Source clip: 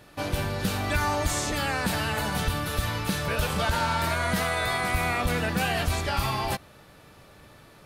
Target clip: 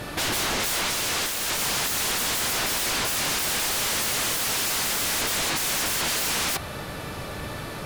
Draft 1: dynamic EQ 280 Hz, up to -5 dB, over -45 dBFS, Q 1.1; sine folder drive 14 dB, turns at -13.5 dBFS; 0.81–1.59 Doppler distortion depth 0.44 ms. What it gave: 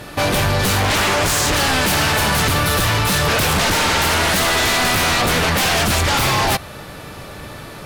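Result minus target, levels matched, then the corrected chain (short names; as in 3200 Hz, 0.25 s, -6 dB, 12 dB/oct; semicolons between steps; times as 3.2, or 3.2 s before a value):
sine folder: distortion -38 dB
dynamic EQ 280 Hz, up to -5 dB, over -45 dBFS, Q 1.1; sine folder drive 14 dB, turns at -22.5 dBFS; 0.81–1.59 Doppler distortion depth 0.44 ms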